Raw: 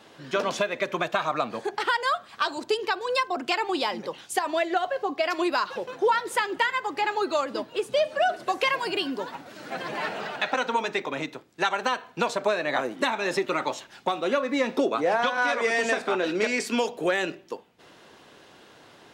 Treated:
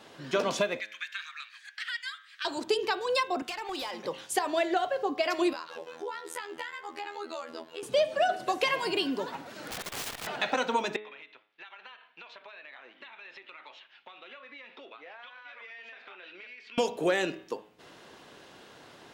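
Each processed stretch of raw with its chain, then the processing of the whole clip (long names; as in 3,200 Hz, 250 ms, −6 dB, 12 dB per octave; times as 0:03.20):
0:00.80–0:02.45: elliptic high-pass filter 1,700 Hz, stop band 70 dB + high-shelf EQ 3,800 Hz −9 dB
0:03.42–0:04.05: high-pass filter 660 Hz 6 dB per octave + downward compressor 12 to 1, threshold −29 dBFS + hard clipping −29.5 dBFS
0:05.53–0:07.83: low-shelf EQ 210 Hz −12 dB + downward compressor 2 to 1, threshold −39 dBFS + phases set to zero 81.6 Hz
0:09.46–0:10.27: mains-hum notches 60/120/180/240/300/360/420 Hz + wrap-around overflow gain 29.5 dB + saturating transformer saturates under 350 Hz
0:10.96–0:16.78: resonant band-pass 2,800 Hz, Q 1.8 + high-frequency loss of the air 250 metres + downward compressor, threshold −44 dBFS
whole clip: hum removal 106.2 Hz, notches 36; dynamic equaliser 1,400 Hz, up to −4 dB, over −36 dBFS, Q 0.7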